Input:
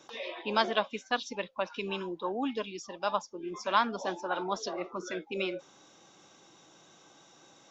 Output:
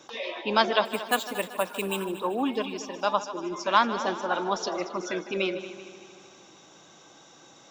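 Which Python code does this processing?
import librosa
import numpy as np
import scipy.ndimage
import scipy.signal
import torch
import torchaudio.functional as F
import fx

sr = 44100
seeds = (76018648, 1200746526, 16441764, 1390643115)

y = fx.resample_bad(x, sr, factor=4, down='filtered', up='hold', at=(0.85, 2.05))
y = fx.echo_heads(y, sr, ms=77, heads='second and third', feedback_pct=55, wet_db=-15)
y = y * 10.0 ** (5.0 / 20.0)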